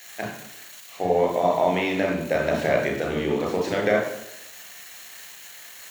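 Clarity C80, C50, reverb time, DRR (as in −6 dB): 8.0 dB, 4.5 dB, 0.85 s, 0.0 dB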